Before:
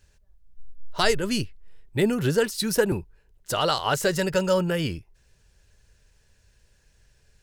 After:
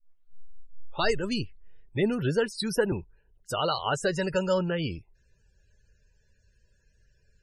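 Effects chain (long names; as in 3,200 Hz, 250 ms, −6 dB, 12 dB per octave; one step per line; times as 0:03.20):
turntable start at the beginning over 1.06 s
spectral peaks only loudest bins 64
level −3.5 dB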